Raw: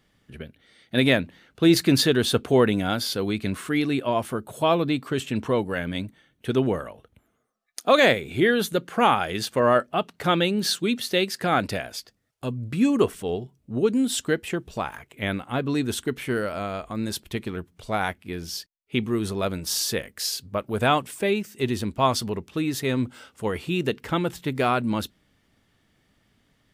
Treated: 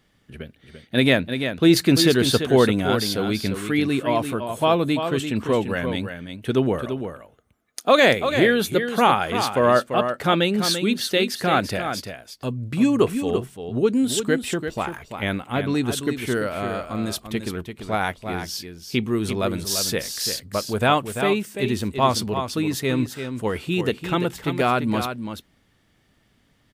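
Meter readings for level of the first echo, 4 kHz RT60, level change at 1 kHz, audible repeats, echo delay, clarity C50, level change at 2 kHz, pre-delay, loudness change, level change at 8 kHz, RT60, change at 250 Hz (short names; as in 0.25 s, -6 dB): -8.0 dB, none, +2.5 dB, 1, 0.341 s, none, +2.5 dB, none, +2.5 dB, +2.5 dB, none, +2.5 dB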